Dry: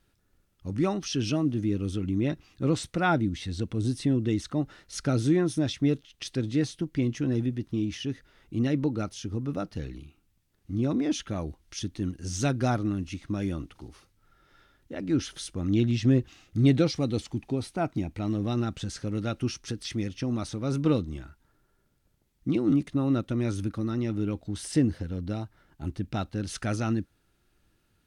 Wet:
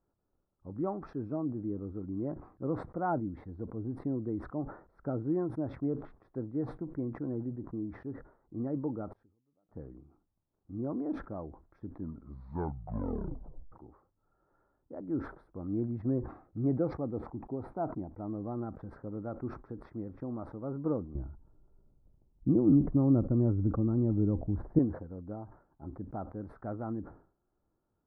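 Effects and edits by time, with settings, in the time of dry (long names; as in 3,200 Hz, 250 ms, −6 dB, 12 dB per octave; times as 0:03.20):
0:09.12–0:09.69: gate with flip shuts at −38 dBFS, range −38 dB
0:11.88: tape stop 1.84 s
0:21.15–0:24.79: spectral tilt −4.5 dB per octave
whole clip: inverse Chebyshev low-pass filter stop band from 2,700 Hz, stop band 50 dB; low-shelf EQ 300 Hz −11 dB; level that may fall only so fast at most 120 dB per second; level −2.5 dB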